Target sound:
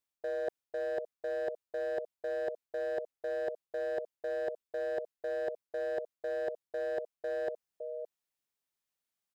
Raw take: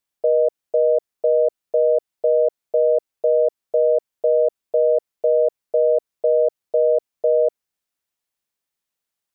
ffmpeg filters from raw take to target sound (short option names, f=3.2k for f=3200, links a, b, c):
-af "aecho=1:1:563:0.133,asoftclip=type=hard:threshold=-15dB,areverse,acompressor=threshold=-27dB:ratio=10,areverse,volume=-6dB"